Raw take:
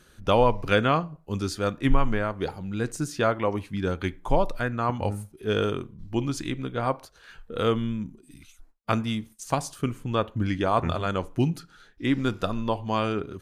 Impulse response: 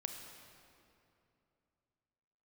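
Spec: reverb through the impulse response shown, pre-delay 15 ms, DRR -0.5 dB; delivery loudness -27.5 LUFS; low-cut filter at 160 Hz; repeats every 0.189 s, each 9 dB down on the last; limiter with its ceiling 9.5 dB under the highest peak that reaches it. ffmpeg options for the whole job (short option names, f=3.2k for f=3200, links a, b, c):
-filter_complex "[0:a]highpass=160,alimiter=limit=-15.5dB:level=0:latency=1,aecho=1:1:189|378|567|756:0.355|0.124|0.0435|0.0152,asplit=2[a][b];[1:a]atrim=start_sample=2205,adelay=15[c];[b][c]afir=irnorm=-1:irlink=0,volume=1.5dB[d];[a][d]amix=inputs=2:normalize=0,volume=-0.5dB"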